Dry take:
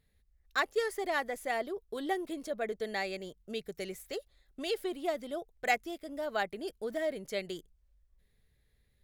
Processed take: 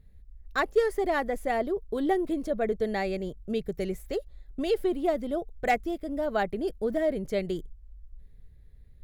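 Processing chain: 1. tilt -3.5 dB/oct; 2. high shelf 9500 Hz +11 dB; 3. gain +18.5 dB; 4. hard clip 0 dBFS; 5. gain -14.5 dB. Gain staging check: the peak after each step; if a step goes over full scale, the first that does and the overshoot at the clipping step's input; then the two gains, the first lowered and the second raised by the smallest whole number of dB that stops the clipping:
-14.5, -14.0, +4.5, 0.0, -14.5 dBFS; step 3, 4.5 dB; step 3 +13.5 dB, step 5 -9.5 dB

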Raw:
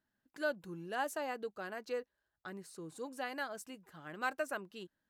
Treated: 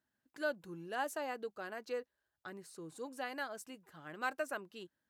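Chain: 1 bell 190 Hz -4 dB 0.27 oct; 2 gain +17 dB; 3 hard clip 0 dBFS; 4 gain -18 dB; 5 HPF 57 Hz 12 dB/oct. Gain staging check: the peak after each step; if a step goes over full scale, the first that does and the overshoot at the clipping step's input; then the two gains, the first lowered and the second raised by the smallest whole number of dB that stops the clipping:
-22.0, -5.0, -5.0, -23.0, -23.0 dBFS; no overload

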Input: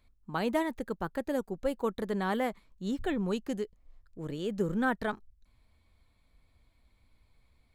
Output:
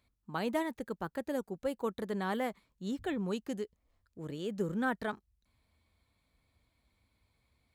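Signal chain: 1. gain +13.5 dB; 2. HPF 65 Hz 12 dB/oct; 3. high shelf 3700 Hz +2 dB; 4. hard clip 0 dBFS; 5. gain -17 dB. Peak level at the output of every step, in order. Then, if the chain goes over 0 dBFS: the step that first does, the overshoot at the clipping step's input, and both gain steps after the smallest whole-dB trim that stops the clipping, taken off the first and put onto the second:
-2.0, -2.0, -2.0, -2.0, -19.0 dBFS; no overload

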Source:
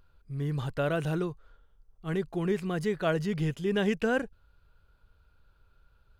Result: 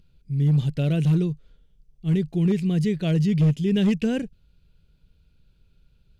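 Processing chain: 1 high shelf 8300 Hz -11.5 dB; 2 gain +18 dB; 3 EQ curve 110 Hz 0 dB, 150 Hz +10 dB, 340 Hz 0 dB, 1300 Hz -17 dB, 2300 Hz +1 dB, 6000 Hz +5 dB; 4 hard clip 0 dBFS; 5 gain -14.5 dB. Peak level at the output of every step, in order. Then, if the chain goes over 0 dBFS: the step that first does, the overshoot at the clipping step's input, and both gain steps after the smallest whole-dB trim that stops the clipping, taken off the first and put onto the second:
-16.0, +2.0, +5.5, 0.0, -14.5 dBFS; step 2, 5.5 dB; step 2 +12 dB, step 5 -8.5 dB

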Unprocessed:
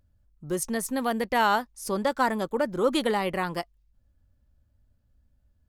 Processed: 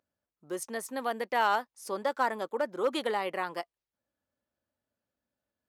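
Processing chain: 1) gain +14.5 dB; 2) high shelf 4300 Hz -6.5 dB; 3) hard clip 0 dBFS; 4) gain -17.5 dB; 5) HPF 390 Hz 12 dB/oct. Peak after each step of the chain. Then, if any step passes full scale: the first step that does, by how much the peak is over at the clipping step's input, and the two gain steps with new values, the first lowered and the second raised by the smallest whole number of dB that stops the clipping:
+4.0, +3.5, 0.0, -17.5, -15.0 dBFS; step 1, 3.5 dB; step 1 +10.5 dB, step 4 -13.5 dB

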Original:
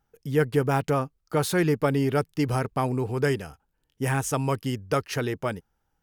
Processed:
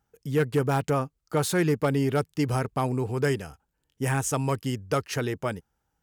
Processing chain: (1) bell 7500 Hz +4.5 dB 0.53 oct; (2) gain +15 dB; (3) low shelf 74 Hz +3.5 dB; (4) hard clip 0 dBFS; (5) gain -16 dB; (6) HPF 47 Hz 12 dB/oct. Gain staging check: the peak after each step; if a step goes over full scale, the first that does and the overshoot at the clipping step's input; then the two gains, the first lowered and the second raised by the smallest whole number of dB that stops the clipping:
-10.0, +5.0, +5.0, 0.0, -16.0, -14.0 dBFS; step 2, 5.0 dB; step 2 +10 dB, step 5 -11 dB

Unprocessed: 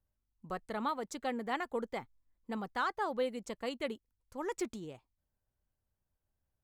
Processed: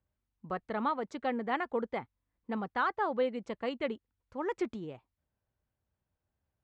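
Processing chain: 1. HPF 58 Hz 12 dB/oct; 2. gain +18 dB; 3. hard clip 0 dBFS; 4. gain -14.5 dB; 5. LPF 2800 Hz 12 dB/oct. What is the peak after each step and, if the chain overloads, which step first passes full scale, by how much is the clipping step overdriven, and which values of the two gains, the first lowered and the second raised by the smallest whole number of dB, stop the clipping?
-22.0, -4.0, -4.0, -18.5, -19.0 dBFS; no overload

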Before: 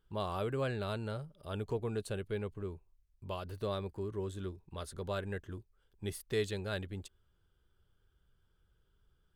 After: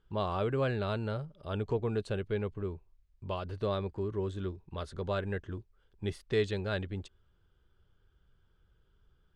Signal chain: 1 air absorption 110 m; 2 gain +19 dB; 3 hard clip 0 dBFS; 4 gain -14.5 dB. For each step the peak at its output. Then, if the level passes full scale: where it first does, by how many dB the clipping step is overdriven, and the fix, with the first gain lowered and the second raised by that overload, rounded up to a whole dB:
-22.0, -3.0, -3.0, -17.5 dBFS; no overload

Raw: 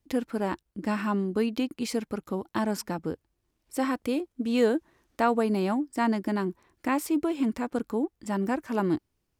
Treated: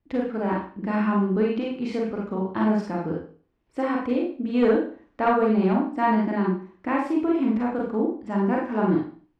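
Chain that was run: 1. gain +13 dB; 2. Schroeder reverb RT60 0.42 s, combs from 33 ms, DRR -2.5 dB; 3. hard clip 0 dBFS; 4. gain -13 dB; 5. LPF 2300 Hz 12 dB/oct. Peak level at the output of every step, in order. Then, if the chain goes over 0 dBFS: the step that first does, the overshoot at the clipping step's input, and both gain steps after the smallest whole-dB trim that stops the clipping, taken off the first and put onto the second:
+1.0, +6.0, 0.0, -13.0, -12.5 dBFS; step 1, 6.0 dB; step 1 +7 dB, step 4 -7 dB

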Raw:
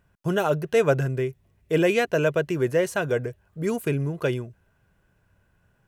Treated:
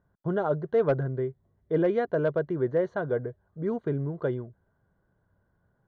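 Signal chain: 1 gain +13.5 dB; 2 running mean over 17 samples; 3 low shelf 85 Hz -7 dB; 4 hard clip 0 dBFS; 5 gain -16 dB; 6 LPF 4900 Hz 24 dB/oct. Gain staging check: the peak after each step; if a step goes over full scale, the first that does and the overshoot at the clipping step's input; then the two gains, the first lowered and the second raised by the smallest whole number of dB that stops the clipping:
+5.5, +4.5, +4.0, 0.0, -16.0, -16.0 dBFS; step 1, 4.0 dB; step 1 +9.5 dB, step 5 -12 dB

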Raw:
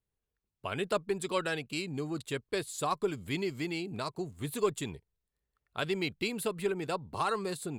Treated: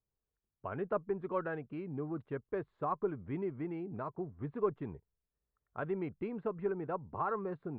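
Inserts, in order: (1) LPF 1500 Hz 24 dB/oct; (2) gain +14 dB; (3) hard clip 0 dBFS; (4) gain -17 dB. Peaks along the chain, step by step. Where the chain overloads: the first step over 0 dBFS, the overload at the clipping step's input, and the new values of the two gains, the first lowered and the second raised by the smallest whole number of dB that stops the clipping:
-17.5, -3.5, -3.5, -20.5 dBFS; no overload

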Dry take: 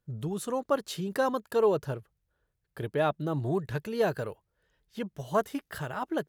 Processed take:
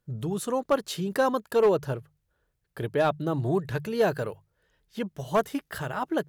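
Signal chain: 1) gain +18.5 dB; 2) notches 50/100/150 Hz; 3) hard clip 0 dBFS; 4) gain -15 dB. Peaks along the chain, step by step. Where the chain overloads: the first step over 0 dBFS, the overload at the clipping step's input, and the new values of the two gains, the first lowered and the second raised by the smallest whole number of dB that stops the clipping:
+4.5, +4.5, 0.0, -15.0 dBFS; step 1, 4.5 dB; step 1 +13.5 dB, step 4 -10 dB

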